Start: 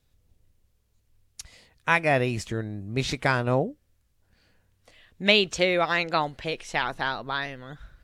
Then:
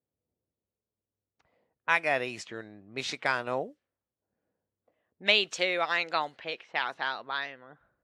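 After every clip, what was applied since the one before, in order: level-controlled noise filter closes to 480 Hz, open at -23 dBFS; frequency weighting A; trim -4 dB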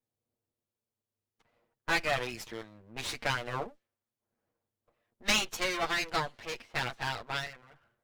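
comb filter that takes the minimum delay 8.6 ms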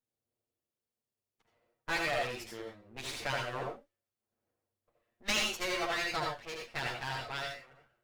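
reverberation, pre-delay 71 ms, DRR 0.5 dB; trim -5 dB

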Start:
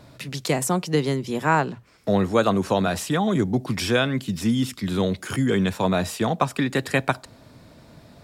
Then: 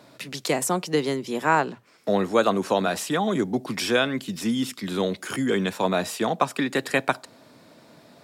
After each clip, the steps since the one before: high-pass 230 Hz 12 dB/octave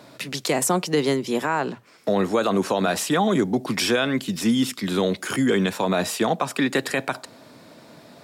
peak limiter -15.5 dBFS, peak gain reduction 9.5 dB; trim +4.5 dB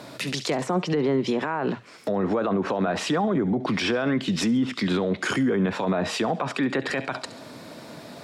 low-pass that closes with the level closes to 1.5 kHz, closed at -17 dBFS; feedback echo behind a high-pass 69 ms, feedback 40%, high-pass 2.5 kHz, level -14 dB; peak limiter -21.5 dBFS, peak gain reduction 10.5 dB; trim +5.5 dB

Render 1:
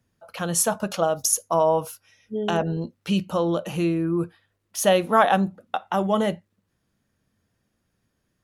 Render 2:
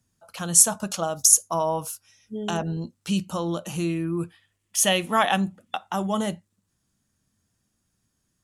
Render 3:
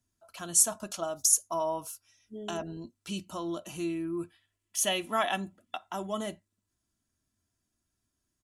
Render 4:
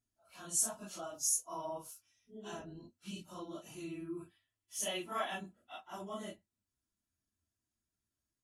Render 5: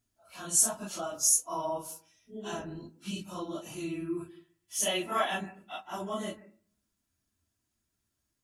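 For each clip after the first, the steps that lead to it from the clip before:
time-frequency box 3.89–5.76 s, 1.7–3.5 kHz +7 dB; graphic EQ 500/2000/8000 Hz -7/-4/+11 dB; trim -1 dB
comb 3 ms, depth 53%; trim -8.5 dB
phase randomisation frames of 100 ms; trim -9 dB
on a send at -16.5 dB: brick-wall FIR band-pass 160–2900 Hz + reverberation RT60 0.45 s, pre-delay 133 ms; on the sum: trim +8 dB

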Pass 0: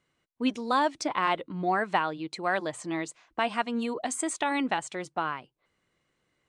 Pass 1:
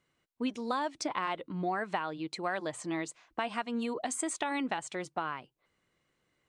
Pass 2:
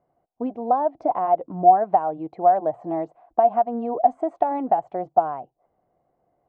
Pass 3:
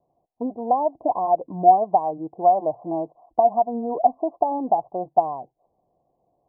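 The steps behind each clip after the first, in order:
compression 4:1, threshold -28 dBFS, peak gain reduction 7.5 dB; trim -1.5 dB
resonant low-pass 720 Hz, resonance Q 8.4; trim +4 dB
steep low-pass 1.1 kHz 96 dB/octave

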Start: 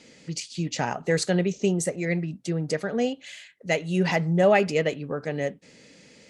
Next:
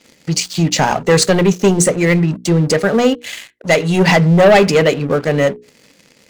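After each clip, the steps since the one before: waveshaping leveller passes 3; hum notches 60/120/180/240/300/360/420/480 Hz; trim +4.5 dB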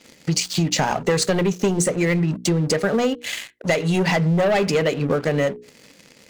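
compression, threshold -17 dBFS, peak gain reduction 11 dB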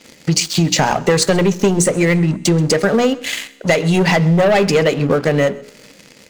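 feedback comb 67 Hz, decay 1.7 s, harmonics all, mix 30%; delay 131 ms -22 dB; trim +8.5 dB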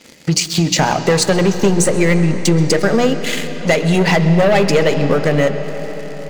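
reverberation RT60 5.4 s, pre-delay 85 ms, DRR 9.5 dB

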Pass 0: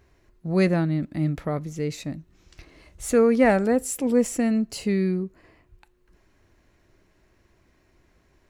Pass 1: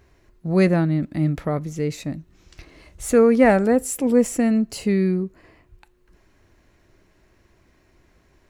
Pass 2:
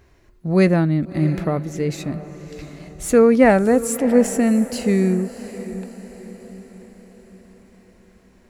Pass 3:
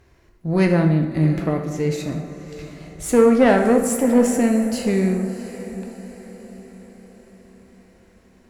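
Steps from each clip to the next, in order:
dynamic bell 4.4 kHz, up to -3 dB, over -45 dBFS, Q 0.73; trim +3.5 dB
echo that smears into a reverb 664 ms, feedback 48%, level -14 dB; trim +2 dB
valve stage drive 8 dB, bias 0.4; plate-style reverb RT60 1.1 s, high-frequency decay 0.75×, DRR 3.5 dB

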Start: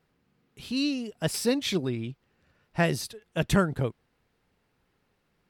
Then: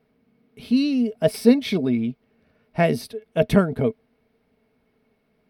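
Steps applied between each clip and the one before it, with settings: peaking EQ 7.1 kHz -14 dB 0.35 oct; small resonant body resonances 240/440/630/2200 Hz, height 15 dB, ringing for 70 ms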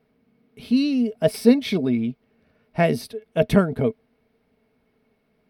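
no audible change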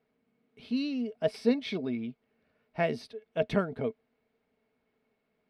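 low-pass 5 kHz 12 dB/octave; bass shelf 240 Hz -8.5 dB; trim -7.5 dB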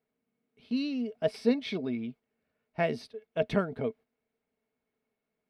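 gate -48 dBFS, range -8 dB

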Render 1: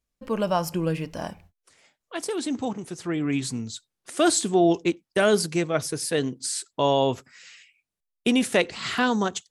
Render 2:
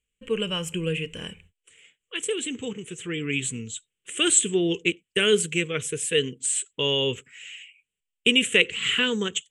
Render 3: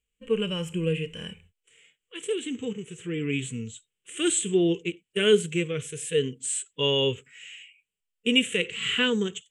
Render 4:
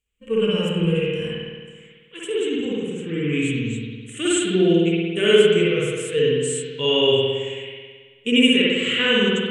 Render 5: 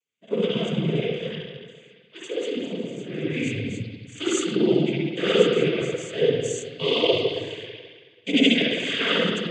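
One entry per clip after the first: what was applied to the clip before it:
FFT filter 180 Hz 0 dB, 310 Hz -5 dB, 460 Hz +6 dB, 660 Hz -20 dB, 3 kHz +15 dB, 4.8 kHz -17 dB, 7.8 kHz +11 dB, 12 kHz -10 dB; trim -2 dB
harmonic-percussive split percussive -12 dB; trim +1.5 dB
spring tank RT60 1.6 s, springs 54 ms, chirp 50 ms, DRR -6.5 dB
noise-vocoded speech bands 16; trim -3.5 dB

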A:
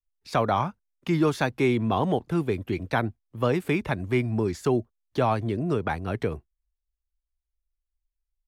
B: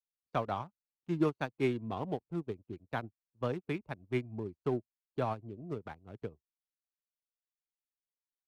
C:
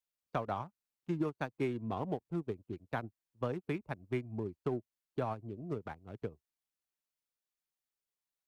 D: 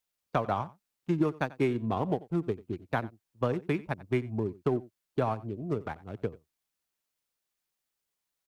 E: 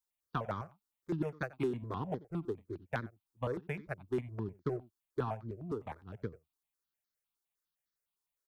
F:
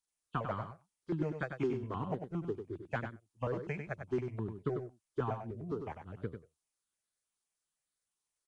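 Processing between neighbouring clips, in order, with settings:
local Wiener filter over 25 samples; upward expansion 2.5:1, over -43 dBFS; trim -5 dB
compression 5:1, threshold -32 dBFS, peak gain reduction 8.5 dB; dynamic bell 3.7 kHz, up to -4 dB, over -59 dBFS, Q 1.1; trim +1.5 dB
delay 90 ms -20 dB; trim +7 dB
stepped phaser 9.8 Hz 610–2700 Hz; trim -4 dB
knee-point frequency compression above 2.5 kHz 1.5:1; delay 97 ms -7.5 dB

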